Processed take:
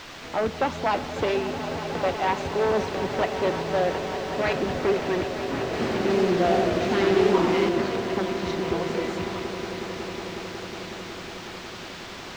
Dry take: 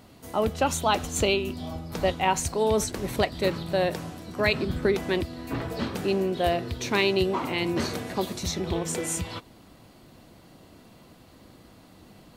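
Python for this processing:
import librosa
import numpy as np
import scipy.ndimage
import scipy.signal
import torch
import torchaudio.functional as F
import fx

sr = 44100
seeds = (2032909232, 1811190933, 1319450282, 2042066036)

y = np.minimum(x, 2.0 * 10.0 ** (-19.0 / 20.0) - x)
y = fx.highpass(y, sr, hz=240.0, slope=6)
y = fx.high_shelf(y, sr, hz=3800.0, db=-11.5)
y = fx.quant_dither(y, sr, seeds[0], bits=6, dither='triangular')
y = fx.air_absorb(y, sr, metres=190.0)
y = fx.echo_swell(y, sr, ms=183, loudest=5, wet_db=-13.0)
y = fx.echo_warbled(y, sr, ms=93, feedback_pct=80, rate_hz=2.8, cents=135, wet_db=-5.0, at=(5.63, 7.69))
y = F.gain(torch.from_numpy(y), 3.5).numpy()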